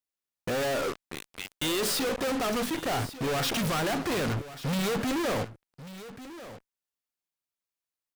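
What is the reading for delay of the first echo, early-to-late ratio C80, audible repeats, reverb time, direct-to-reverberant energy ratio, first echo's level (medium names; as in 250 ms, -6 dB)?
1141 ms, no reverb, 1, no reverb, no reverb, -15.0 dB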